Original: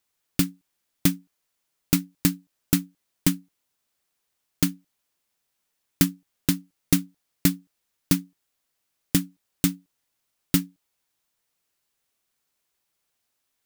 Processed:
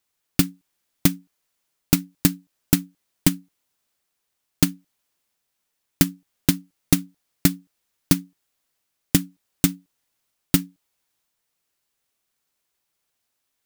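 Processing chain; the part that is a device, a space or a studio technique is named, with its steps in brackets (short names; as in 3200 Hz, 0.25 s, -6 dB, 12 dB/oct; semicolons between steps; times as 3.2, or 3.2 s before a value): drum-bus smash (transient shaper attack +8 dB, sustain +2 dB; compressor, threshold -10 dBFS, peak gain reduction 5.5 dB; soft clip -1.5 dBFS, distortion -16 dB)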